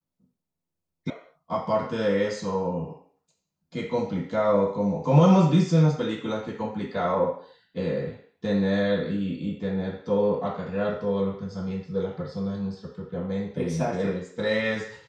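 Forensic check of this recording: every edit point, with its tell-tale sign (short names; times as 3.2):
1.1 sound cut off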